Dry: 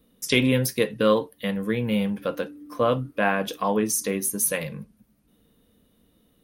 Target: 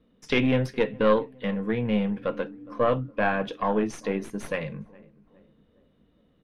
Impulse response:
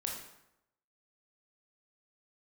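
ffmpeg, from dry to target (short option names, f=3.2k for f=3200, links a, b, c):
-filter_complex "[0:a]aeval=exprs='(tanh(3.16*val(0)+0.65)-tanh(0.65))/3.16':c=same,lowpass=2.7k,asplit=2[a][b];[b]adelay=413,lowpass=f=1.3k:p=1,volume=-22.5dB,asplit=2[c][d];[d]adelay=413,lowpass=f=1.3k:p=1,volume=0.53,asplit=2[e][f];[f]adelay=413,lowpass=f=1.3k:p=1,volume=0.53,asplit=2[g][h];[h]adelay=413,lowpass=f=1.3k:p=1,volume=0.53[i];[a][c][e][g][i]amix=inputs=5:normalize=0,volume=2.5dB"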